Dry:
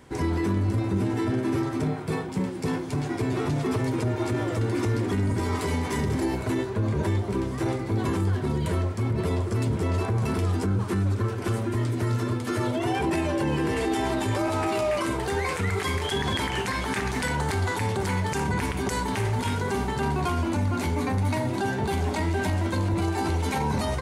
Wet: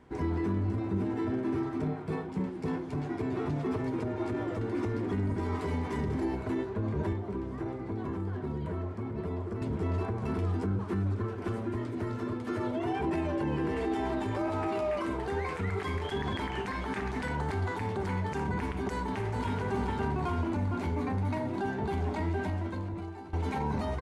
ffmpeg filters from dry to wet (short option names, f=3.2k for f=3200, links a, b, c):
-filter_complex "[0:a]asettb=1/sr,asplit=3[a][b][c];[a]atrim=end=7.124[d];[b]atrim=start=7.12:end=9.62,asetpts=PTS-STARTPTS,afade=t=in:d=0.004:c=qsin,afade=t=out:st=2.496:d=0.004:c=qsin,acrossover=split=130|2000[e][f][g];[e]acompressor=threshold=-33dB:ratio=4[h];[f]acompressor=threshold=-28dB:ratio=4[i];[g]acompressor=threshold=-52dB:ratio=4[j];[h][i][j]amix=inputs=3:normalize=0[k];[c]atrim=start=9.616[l];[d][k]acrossfade=d=0.004:c1=hsin:c2=qsin[m];[m][l]acrossfade=d=0.004:c1=qsin:c2=hsin,asplit=2[n][o];[o]afade=t=in:st=18.89:d=0.01,afade=t=out:st=19.62:d=0.01,aecho=0:1:430|860|1290|1720|2150|2580|3010:0.562341|0.309288|0.170108|0.0935595|0.0514577|0.0283018|0.015566[p];[n][p]amix=inputs=2:normalize=0,asplit=2[q][r];[q]atrim=end=23.33,asetpts=PTS-STARTPTS,afade=t=out:st=22.32:d=1.01:silence=0.141254[s];[r]atrim=start=23.33,asetpts=PTS-STARTPTS,afade=t=in:d=0.004:c=hsin:silence=0.141254[t];[s][t]concat=n=2:v=0:a=1,lowpass=f=1.5k:p=1,equalizer=f=120:w=6.6:g=-10.5,bandreject=f=540:w=14,volume=-4.5dB"